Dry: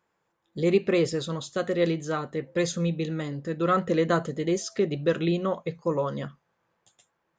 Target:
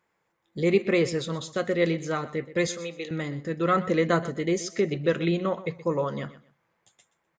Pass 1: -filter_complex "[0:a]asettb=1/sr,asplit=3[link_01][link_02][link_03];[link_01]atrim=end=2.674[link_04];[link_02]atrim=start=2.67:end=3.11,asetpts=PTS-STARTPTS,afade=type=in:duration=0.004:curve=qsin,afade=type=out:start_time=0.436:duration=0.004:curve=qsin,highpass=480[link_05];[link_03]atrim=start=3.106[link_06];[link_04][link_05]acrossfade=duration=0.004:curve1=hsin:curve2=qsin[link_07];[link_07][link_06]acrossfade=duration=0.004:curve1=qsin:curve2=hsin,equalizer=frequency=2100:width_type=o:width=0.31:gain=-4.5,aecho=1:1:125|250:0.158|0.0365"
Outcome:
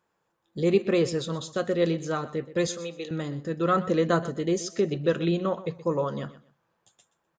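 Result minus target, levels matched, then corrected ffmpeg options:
2,000 Hz band −4.0 dB
-filter_complex "[0:a]asettb=1/sr,asplit=3[link_01][link_02][link_03];[link_01]atrim=end=2.674[link_04];[link_02]atrim=start=2.67:end=3.11,asetpts=PTS-STARTPTS,afade=type=in:duration=0.004:curve=qsin,afade=type=out:start_time=0.436:duration=0.004:curve=qsin,highpass=480[link_05];[link_03]atrim=start=3.106[link_06];[link_04][link_05]acrossfade=duration=0.004:curve1=hsin:curve2=qsin[link_07];[link_07][link_06]acrossfade=duration=0.004:curve1=qsin:curve2=hsin,equalizer=frequency=2100:width_type=o:width=0.31:gain=7,aecho=1:1:125|250:0.158|0.0365"

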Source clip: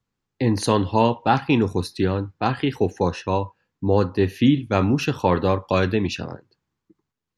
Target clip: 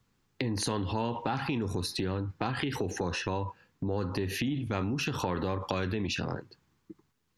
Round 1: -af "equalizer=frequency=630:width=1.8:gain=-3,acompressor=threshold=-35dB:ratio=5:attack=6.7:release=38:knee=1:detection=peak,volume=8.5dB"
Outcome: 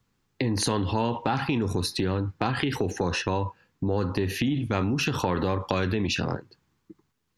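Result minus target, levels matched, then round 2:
downward compressor: peak gain reduction −5.5 dB
-af "equalizer=frequency=630:width=1.8:gain=-3,acompressor=threshold=-42dB:ratio=5:attack=6.7:release=38:knee=1:detection=peak,volume=8.5dB"

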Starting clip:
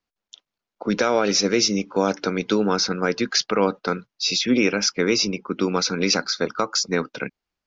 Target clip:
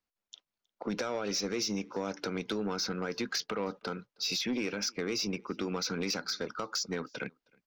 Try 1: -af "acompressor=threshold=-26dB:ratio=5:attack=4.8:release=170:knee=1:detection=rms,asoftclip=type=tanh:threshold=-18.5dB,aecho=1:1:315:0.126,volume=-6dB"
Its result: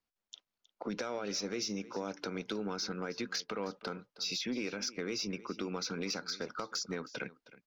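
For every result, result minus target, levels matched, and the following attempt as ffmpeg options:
echo-to-direct +11.5 dB; downward compressor: peak gain reduction +5 dB
-af "acompressor=threshold=-26dB:ratio=5:attack=4.8:release=170:knee=1:detection=rms,asoftclip=type=tanh:threshold=-18.5dB,aecho=1:1:315:0.0335,volume=-6dB"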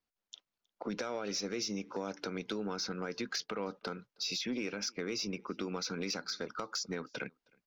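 downward compressor: peak gain reduction +5 dB
-af "acompressor=threshold=-20dB:ratio=5:attack=4.8:release=170:knee=1:detection=rms,asoftclip=type=tanh:threshold=-18.5dB,aecho=1:1:315:0.0335,volume=-6dB"

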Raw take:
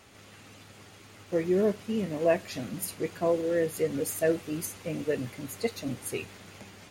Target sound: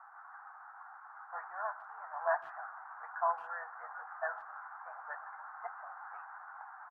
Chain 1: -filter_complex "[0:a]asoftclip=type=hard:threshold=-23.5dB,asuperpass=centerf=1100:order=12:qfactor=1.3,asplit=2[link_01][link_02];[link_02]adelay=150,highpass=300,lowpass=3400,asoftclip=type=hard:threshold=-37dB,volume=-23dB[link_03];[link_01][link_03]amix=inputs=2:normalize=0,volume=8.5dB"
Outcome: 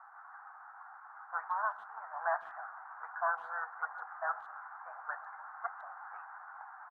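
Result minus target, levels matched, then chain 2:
hard clipping: distortion +15 dB
-filter_complex "[0:a]asoftclip=type=hard:threshold=-17dB,asuperpass=centerf=1100:order=12:qfactor=1.3,asplit=2[link_01][link_02];[link_02]adelay=150,highpass=300,lowpass=3400,asoftclip=type=hard:threshold=-37dB,volume=-23dB[link_03];[link_01][link_03]amix=inputs=2:normalize=0,volume=8.5dB"

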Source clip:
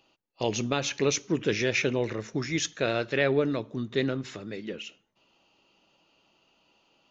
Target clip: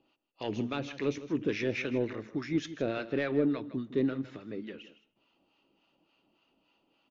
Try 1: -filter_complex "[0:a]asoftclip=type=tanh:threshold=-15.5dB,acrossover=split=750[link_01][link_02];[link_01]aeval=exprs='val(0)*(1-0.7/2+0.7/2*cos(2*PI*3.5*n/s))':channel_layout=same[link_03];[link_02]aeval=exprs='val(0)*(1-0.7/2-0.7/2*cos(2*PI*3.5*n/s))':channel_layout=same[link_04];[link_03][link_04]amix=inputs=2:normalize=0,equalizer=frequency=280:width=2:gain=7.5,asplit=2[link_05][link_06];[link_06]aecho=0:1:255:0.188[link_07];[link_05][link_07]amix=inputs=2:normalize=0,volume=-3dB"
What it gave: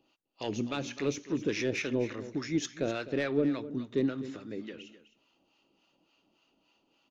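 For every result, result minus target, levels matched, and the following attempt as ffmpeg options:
echo 96 ms late; 4,000 Hz band +3.0 dB
-filter_complex "[0:a]asoftclip=type=tanh:threshold=-15.5dB,acrossover=split=750[link_01][link_02];[link_01]aeval=exprs='val(0)*(1-0.7/2+0.7/2*cos(2*PI*3.5*n/s))':channel_layout=same[link_03];[link_02]aeval=exprs='val(0)*(1-0.7/2-0.7/2*cos(2*PI*3.5*n/s))':channel_layout=same[link_04];[link_03][link_04]amix=inputs=2:normalize=0,equalizer=frequency=280:width=2:gain=7.5,asplit=2[link_05][link_06];[link_06]aecho=0:1:159:0.188[link_07];[link_05][link_07]amix=inputs=2:normalize=0,volume=-3dB"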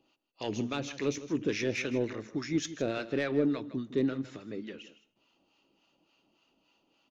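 4,000 Hz band +3.0 dB
-filter_complex "[0:a]asoftclip=type=tanh:threshold=-15.5dB,acrossover=split=750[link_01][link_02];[link_01]aeval=exprs='val(0)*(1-0.7/2+0.7/2*cos(2*PI*3.5*n/s))':channel_layout=same[link_03];[link_02]aeval=exprs='val(0)*(1-0.7/2-0.7/2*cos(2*PI*3.5*n/s))':channel_layout=same[link_04];[link_03][link_04]amix=inputs=2:normalize=0,lowpass=3700,equalizer=frequency=280:width=2:gain=7.5,asplit=2[link_05][link_06];[link_06]aecho=0:1:159:0.188[link_07];[link_05][link_07]amix=inputs=2:normalize=0,volume=-3dB"

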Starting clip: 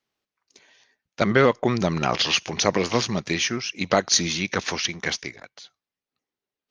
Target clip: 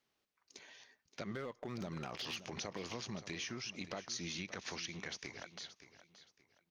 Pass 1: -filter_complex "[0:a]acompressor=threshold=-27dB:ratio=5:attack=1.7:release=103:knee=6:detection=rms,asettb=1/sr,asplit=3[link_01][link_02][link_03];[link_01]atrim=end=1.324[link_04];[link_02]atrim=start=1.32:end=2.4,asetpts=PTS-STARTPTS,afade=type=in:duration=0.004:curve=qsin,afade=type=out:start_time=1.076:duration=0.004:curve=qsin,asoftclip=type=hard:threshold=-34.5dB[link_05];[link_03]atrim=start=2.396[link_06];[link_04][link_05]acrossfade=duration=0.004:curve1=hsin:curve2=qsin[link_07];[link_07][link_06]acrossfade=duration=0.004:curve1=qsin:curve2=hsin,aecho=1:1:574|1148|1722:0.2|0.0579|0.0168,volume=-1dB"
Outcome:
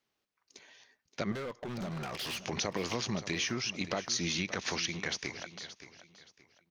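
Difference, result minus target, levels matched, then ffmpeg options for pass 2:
downward compressor: peak gain reduction −9.5 dB
-filter_complex "[0:a]acompressor=threshold=-39dB:ratio=5:attack=1.7:release=103:knee=6:detection=rms,asettb=1/sr,asplit=3[link_01][link_02][link_03];[link_01]atrim=end=1.324[link_04];[link_02]atrim=start=1.32:end=2.4,asetpts=PTS-STARTPTS,afade=type=in:duration=0.004:curve=qsin,afade=type=out:start_time=1.076:duration=0.004:curve=qsin,asoftclip=type=hard:threshold=-34.5dB[link_05];[link_03]atrim=start=2.396[link_06];[link_04][link_05]acrossfade=duration=0.004:curve1=hsin:curve2=qsin[link_07];[link_07][link_06]acrossfade=duration=0.004:curve1=qsin:curve2=hsin,aecho=1:1:574|1148|1722:0.2|0.0579|0.0168,volume=-1dB"

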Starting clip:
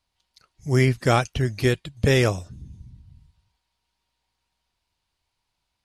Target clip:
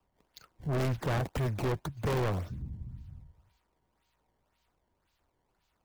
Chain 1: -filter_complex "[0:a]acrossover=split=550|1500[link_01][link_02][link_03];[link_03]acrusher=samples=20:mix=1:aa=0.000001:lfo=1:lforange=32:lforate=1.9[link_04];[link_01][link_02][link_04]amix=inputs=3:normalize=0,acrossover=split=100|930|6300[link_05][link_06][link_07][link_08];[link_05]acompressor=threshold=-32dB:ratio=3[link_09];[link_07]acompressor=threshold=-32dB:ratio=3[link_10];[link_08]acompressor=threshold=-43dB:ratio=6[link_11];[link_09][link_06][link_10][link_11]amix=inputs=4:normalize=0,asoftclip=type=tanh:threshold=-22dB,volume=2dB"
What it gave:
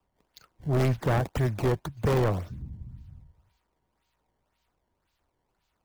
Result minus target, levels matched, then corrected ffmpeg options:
soft clipping: distortion −4 dB
-filter_complex "[0:a]acrossover=split=550|1500[link_01][link_02][link_03];[link_03]acrusher=samples=20:mix=1:aa=0.000001:lfo=1:lforange=32:lforate=1.9[link_04];[link_01][link_02][link_04]amix=inputs=3:normalize=0,acrossover=split=100|930|6300[link_05][link_06][link_07][link_08];[link_05]acompressor=threshold=-32dB:ratio=3[link_09];[link_07]acompressor=threshold=-32dB:ratio=3[link_10];[link_08]acompressor=threshold=-43dB:ratio=6[link_11];[link_09][link_06][link_10][link_11]amix=inputs=4:normalize=0,asoftclip=type=tanh:threshold=-29.5dB,volume=2dB"

